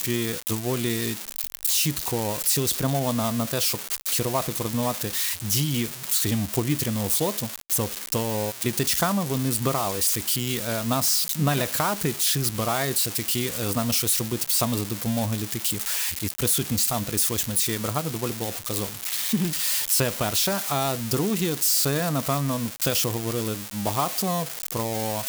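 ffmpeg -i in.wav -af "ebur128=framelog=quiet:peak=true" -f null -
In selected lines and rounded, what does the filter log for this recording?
Integrated loudness:
  I:         -23.8 LUFS
  Threshold: -33.8 LUFS
Loudness range:
  LRA:         1.7 LU
  Threshold: -43.6 LUFS
  LRA low:   -24.3 LUFS
  LRA high:  -22.6 LUFS
True peak:
  Peak:       -6.9 dBFS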